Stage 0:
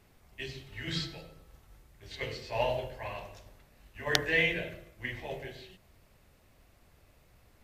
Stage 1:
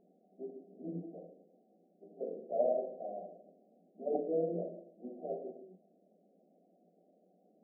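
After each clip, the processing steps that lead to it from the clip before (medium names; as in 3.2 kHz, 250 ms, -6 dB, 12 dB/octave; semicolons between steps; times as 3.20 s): FFT band-pass 170–780 Hz; trim +1 dB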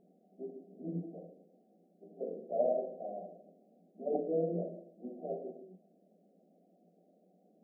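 peaking EQ 140 Hz +6 dB 1.1 oct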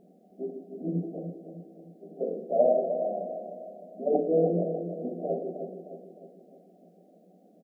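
feedback delay 307 ms, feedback 49%, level -9 dB; trim +8.5 dB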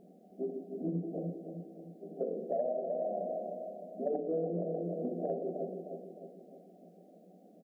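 compression 6:1, threshold -31 dBFS, peak gain reduction 13.5 dB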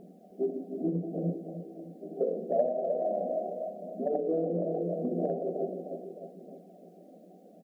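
phaser 0.77 Hz, delay 4 ms, feedback 32%; trim +4.5 dB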